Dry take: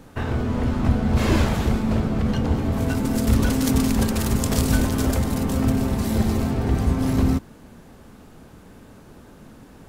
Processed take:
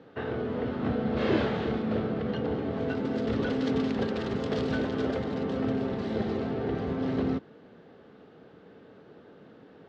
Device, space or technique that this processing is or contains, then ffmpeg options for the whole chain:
kitchen radio: -filter_complex "[0:a]asettb=1/sr,asplit=3[a][b][c];[a]atrim=end=0.794[d];[b]atrim=start=0.79:end=2.14,asetpts=PTS-STARTPTS,afade=t=in:d=0.004:c=qsin,afade=t=out:st=1.346:d=0.004:c=qsin,asplit=2[e][f];[f]adelay=28,volume=-6dB[g];[e][g]amix=inputs=2:normalize=0,atrim=end_sample=59535[h];[c]atrim=start=2.136[i];[d][h]acrossfade=d=0.004:c1=hsin:c2=qsin[j];[j][i]acrossfade=d=0.004:c1=qsin:c2=hsin,highpass=180,equalizer=f=230:t=q:w=4:g=-4,equalizer=f=450:t=q:w=4:g=7,equalizer=f=990:t=q:w=4:g=-6,equalizer=f=2.4k:t=q:w=4:g=-5,lowpass=f=3.7k:w=0.5412,lowpass=f=3.7k:w=1.3066,volume=-4.5dB"

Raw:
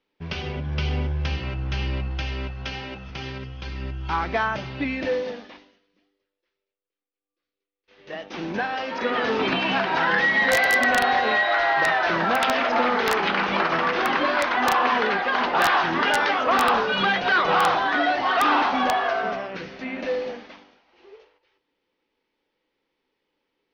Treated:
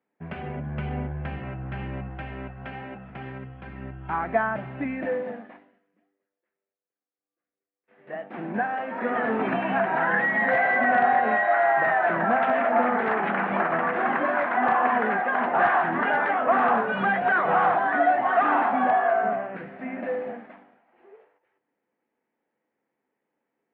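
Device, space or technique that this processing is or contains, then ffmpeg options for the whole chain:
bass cabinet: -af "highpass=f=76:w=0.5412,highpass=f=76:w=1.3066,equalizer=f=96:t=q:w=4:g=-9,equalizer=f=140:t=q:w=4:g=4,equalizer=f=220:t=q:w=4:g=8,equalizer=f=700:t=q:w=4:g=9,equalizer=f=1.7k:t=q:w=4:g=4,lowpass=f=2.1k:w=0.5412,lowpass=f=2.1k:w=1.3066,volume=-4.5dB"

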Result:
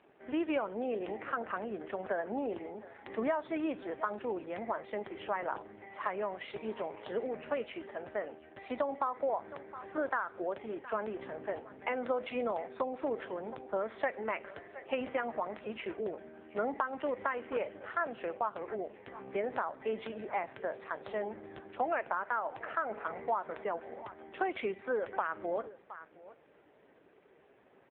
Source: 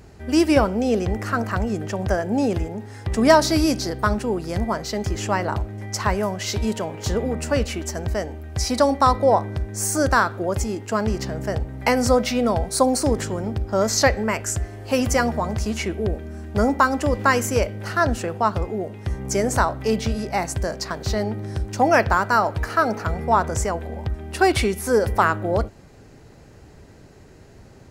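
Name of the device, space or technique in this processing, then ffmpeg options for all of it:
voicemail: -af "highpass=390,lowpass=3.2k,aecho=1:1:715:0.0841,acompressor=threshold=-21dB:ratio=8,volume=-7dB" -ar 8000 -c:a libopencore_amrnb -b:a 5900

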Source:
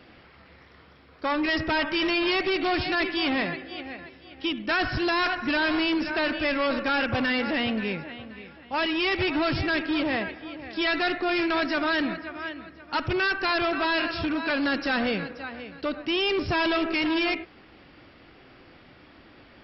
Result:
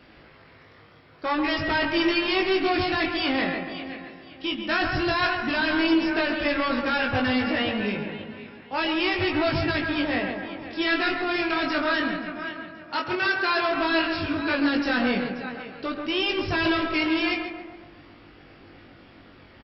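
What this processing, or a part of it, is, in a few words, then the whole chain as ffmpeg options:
double-tracked vocal: -filter_complex "[0:a]asettb=1/sr,asplit=3[a][b][c];[a]atrim=end=12.934[d];[b]atrim=start=12.93:end=13.69,asetpts=PTS-STARTPTS,afade=t=in:d=0.004:c=qsin,afade=t=out:st=0.756:d=0.004:c=qsin,highpass=230[e];[c]atrim=start=13.686[f];[d][e]acrossfade=d=0.004:c1=hsin:c2=qsin[g];[g][f]acrossfade=d=0.004:c1=qsin:c2=hsin,asplit=2[h][i];[i]adelay=21,volume=-12dB[j];[h][j]amix=inputs=2:normalize=0,asplit=2[k][l];[l]adelay=138,lowpass=f=2.1k:p=1,volume=-5.5dB,asplit=2[m][n];[n]adelay=138,lowpass=f=2.1k:p=1,volume=0.53,asplit=2[o][p];[p]adelay=138,lowpass=f=2.1k:p=1,volume=0.53,asplit=2[q][r];[r]adelay=138,lowpass=f=2.1k:p=1,volume=0.53,asplit=2[s][t];[t]adelay=138,lowpass=f=2.1k:p=1,volume=0.53,asplit=2[u][v];[v]adelay=138,lowpass=f=2.1k:p=1,volume=0.53,asplit=2[w][x];[x]adelay=138,lowpass=f=2.1k:p=1,volume=0.53[y];[k][m][o][q][s][u][w][y]amix=inputs=8:normalize=0,flanger=delay=19:depth=3.8:speed=0.12,volume=3dB"

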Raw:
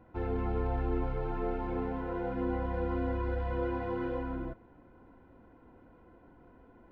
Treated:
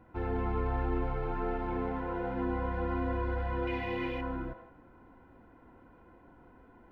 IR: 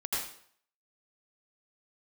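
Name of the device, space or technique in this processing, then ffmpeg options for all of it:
filtered reverb send: -filter_complex "[0:a]asplit=2[a][b];[b]highpass=f=530:w=0.5412,highpass=f=530:w=1.3066,lowpass=3.2k[c];[1:a]atrim=start_sample=2205[d];[c][d]afir=irnorm=-1:irlink=0,volume=-8dB[e];[a][e]amix=inputs=2:normalize=0,asettb=1/sr,asplit=3[f][g][h];[f]atrim=end=3.674[i];[g]atrim=start=3.67:end=4.21,asetpts=PTS-STARTPTS,afade=t=in:d=0.004:c=qsin,afade=t=out:st=0.536:d=0.004:c=qsin,highshelf=f=1.8k:t=q:w=3:g=7.5[j];[h]atrim=start=4.206[k];[i][j]acrossfade=d=0.004:c1=hsin:c2=qsin[l];[l][k]acrossfade=d=0.004:c1=qsin:c2=hsin"

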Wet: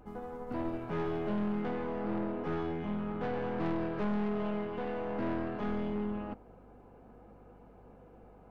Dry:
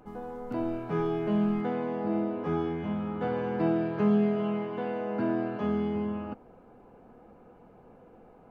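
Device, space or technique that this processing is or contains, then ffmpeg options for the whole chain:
valve amplifier with mains hum: -af "aeval=exprs='(tanh(31.6*val(0)+0.55)-tanh(0.55))/31.6':c=same,aeval=exprs='val(0)+0.00112*(sin(2*PI*50*n/s)+sin(2*PI*2*50*n/s)/2+sin(2*PI*3*50*n/s)/3+sin(2*PI*4*50*n/s)/4+sin(2*PI*5*50*n/s)/5)':c=same"

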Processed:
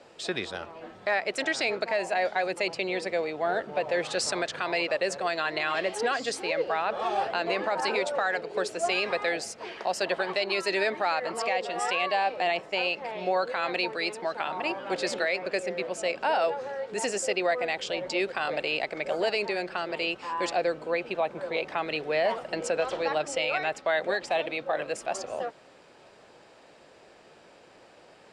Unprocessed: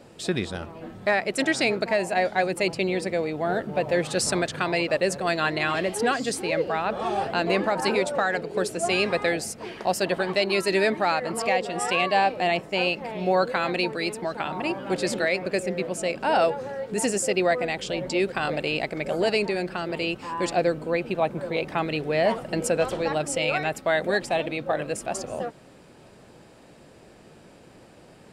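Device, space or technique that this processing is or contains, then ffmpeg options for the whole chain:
DJ mixer with the lows and highs turned down: -filter_complex "[0:a]acrossover=split=400 7700:gain=0.2 1 0.1[a][b][c];[a][b][c]amix=inputs=3:normalize=0,alimiter=limit=-17dB:level=0:latency=1:release=75,asettb=1/sr,asplit=3[d][e][f];[d]atrim=end=22.544[g];[e]atrim=start=22.54:end=24.27,asetpts=PTS-STARTPTS,afade=t=in:d=0.004:c=qsin,afade=t=out:st=1.726:d=0.004:c=qsin,lowpass=8.5k[h];[f]atrim=start=24.266[i];[g][h]acrossfade=d=0.004:c1=hsin:c2=qsin[j];[j][i]acrossfade=d=0.004:c1=qsin:c2=hsin"

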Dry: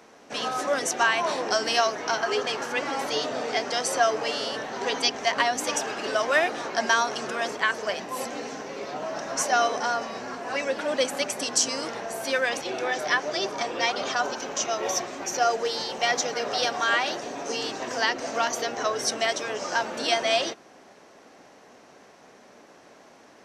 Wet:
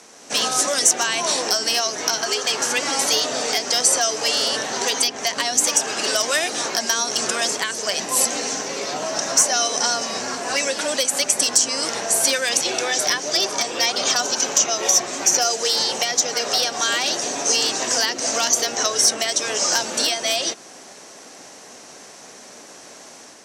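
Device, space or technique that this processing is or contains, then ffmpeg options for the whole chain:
FM broadcast chain: -filter_complex "[0:a]highpass=63,lowpass=f=8.6k:w=0.5412,lowpass=f=8.6k:w=1.3066,dynaudnorm=f=100:g=5:m=4.5dB,acrossover=split=510|2800[a][b][c];[a]acompressor=threshold=-32dB:ratio=4[d];[b]acompressor=threshold=-28dB:ratio=4[e];[c]acompressor=threshold=-30dB:ratio=4[f];[d][e][f]amix=inputs=3:normalize=0,aemphasis=mode=production:type=50fm,alimiter=limit=-12dB:level=0:latency=1:release=334,asoftclip=type=hard:threshold=-15dB,lowpass=f=15k:w=0.5412,lowpass=f=15k:w=1.3066,aemphasis=mode=production:type=50fm,volume=2.5dB"

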